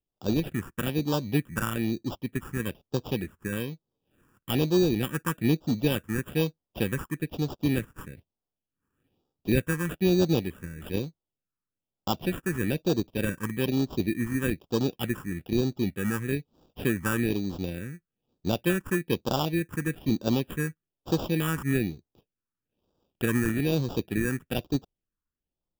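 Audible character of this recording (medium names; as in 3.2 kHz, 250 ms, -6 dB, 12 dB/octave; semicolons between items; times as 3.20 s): aliases and images of a low sample rate 2.1 kHz, jitter 0%; phasing stages 4, 1.1 Hz, lowest notch 650–2000 Hz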